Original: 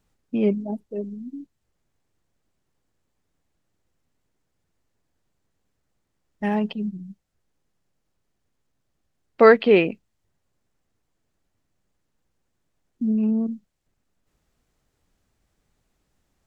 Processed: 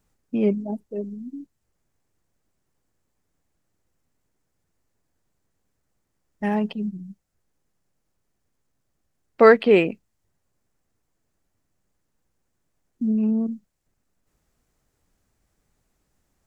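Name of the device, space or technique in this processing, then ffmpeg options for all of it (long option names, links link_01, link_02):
exciter from parts: -filter_complex "[0:a]asplit=2[link_01][link_02];[link_02]highpass=3300,asoftclip=type=tanh:threshold=-29.5dB,highpass=2600,volume=-6dB[link_03];[link_01][link_03]amix=inputs=2:normalize=0"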